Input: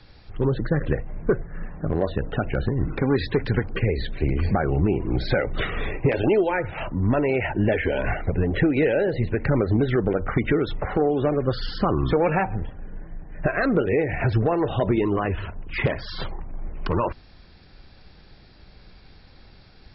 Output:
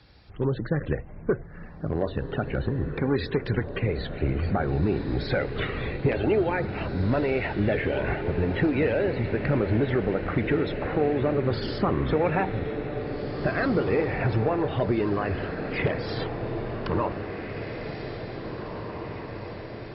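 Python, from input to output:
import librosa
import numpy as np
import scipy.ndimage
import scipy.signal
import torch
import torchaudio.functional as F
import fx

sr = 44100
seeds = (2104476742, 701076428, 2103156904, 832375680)

y = scipy.signal.sosfilt(scipy.signal.butter(2, 43.0, 'highpass', fs=sr, output='sos'), x)
y = fx.echo_diffused(y, sr, ms=1950, feedback_pct=61, wet_db=-7.5)
y = F.gain(torch.from_numpy(y), -3.5).numpy()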